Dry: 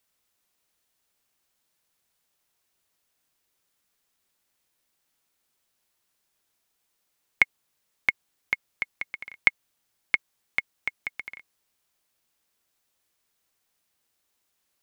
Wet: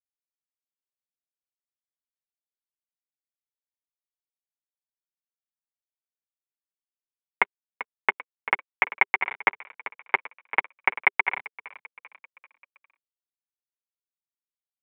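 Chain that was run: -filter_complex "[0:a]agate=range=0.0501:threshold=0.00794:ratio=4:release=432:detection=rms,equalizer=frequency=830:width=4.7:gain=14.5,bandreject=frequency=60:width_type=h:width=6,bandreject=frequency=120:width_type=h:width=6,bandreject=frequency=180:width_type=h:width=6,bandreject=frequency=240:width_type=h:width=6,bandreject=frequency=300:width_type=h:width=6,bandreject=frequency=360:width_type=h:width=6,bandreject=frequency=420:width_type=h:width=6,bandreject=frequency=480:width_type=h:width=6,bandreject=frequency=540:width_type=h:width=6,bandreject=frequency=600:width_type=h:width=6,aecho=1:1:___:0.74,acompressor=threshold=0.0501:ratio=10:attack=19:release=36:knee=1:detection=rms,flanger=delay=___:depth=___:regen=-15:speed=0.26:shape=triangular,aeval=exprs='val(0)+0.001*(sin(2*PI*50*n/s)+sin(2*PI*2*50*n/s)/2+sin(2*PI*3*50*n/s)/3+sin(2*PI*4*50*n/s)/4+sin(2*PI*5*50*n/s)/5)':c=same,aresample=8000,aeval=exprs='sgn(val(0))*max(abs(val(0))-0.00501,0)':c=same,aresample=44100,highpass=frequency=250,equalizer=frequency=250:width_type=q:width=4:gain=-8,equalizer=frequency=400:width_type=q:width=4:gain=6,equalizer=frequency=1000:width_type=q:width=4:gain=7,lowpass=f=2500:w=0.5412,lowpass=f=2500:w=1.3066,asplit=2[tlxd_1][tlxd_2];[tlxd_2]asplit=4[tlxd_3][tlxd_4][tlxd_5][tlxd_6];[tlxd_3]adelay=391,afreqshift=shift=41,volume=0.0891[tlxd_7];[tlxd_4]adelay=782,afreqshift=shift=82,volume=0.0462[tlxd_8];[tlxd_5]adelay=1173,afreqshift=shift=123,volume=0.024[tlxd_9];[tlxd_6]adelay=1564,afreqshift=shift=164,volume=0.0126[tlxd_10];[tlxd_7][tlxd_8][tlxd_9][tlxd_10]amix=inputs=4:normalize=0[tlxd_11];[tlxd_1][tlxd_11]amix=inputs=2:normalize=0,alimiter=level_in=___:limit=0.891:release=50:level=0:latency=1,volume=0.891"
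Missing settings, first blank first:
5.3, 3.4, 5.9, 10.6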